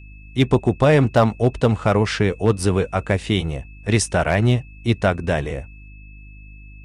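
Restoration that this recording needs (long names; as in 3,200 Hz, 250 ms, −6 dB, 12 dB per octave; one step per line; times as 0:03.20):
clipped peaks rebuilt −6.5 dBFS
hum removal 51.2 Hz, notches 6
notch filter 2,600 Hz, Q 30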